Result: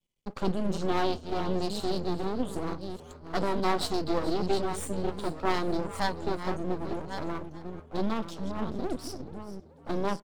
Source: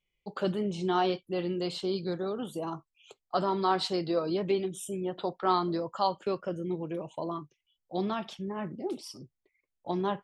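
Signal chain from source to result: chunks repeated in reverse 600 ms, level -9.5 dB; graphic EQ 125/250/1000/2000/4000/8000 Hz +5/+10/+5/-11/+4/+8 dB; half-wave rectifier; frequency-shifting echo 432 ms, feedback 31%, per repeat +79 Hz, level -16.5 dB

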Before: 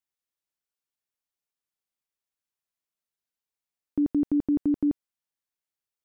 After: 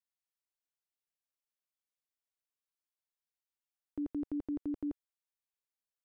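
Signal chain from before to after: peaking EQ 190 Hz -14.5 dB 0.94 oct; trim -7 dB

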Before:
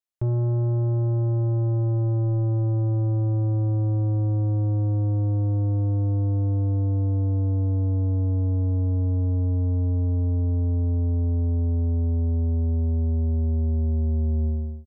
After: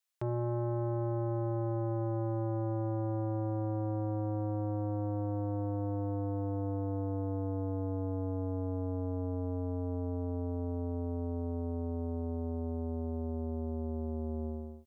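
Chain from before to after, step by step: high-pass 1.1 kHz 6 dB/octave; trim +6.5 dB

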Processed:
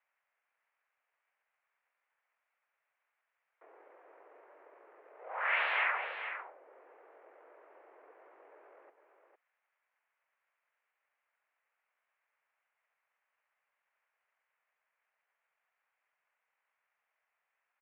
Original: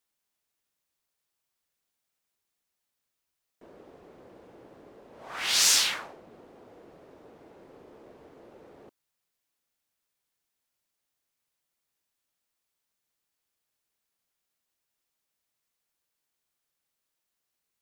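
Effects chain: pitch shift -9 st; wavefolder -19 dBFS; mistuned SSB +89 Hz 430–2200 Hz; delay 455 ms -9.5 dB; tape noise reduction on one side only encoder only

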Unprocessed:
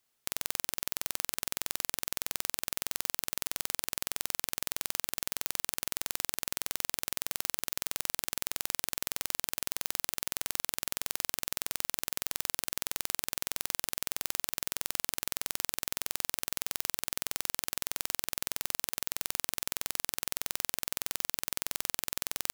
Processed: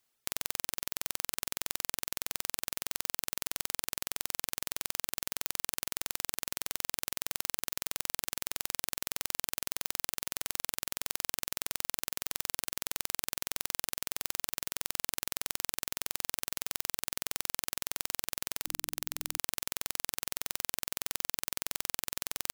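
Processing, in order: 18.65–19.38 s: hum notches 50/100/150/200/250/300 Hz; reverb removal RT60 1.6 s

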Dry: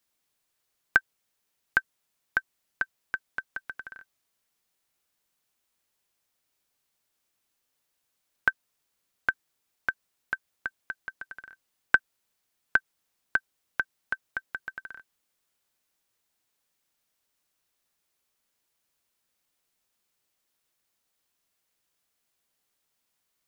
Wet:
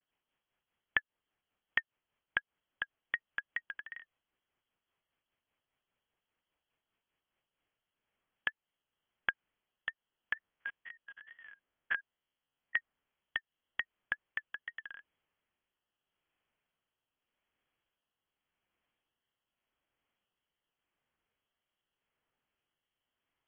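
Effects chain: 10.34–12.77 s: spectrogram pixelated in time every 50 ms; compression 2.5:1, threshold -29 dBFS, peak gain reduction 10 dB; rotary cabinet horn 5 Hz, later 0.85 Hz, at 7.16 s; wow and flutter 140 cents; frequency inversion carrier 3.3 kHz

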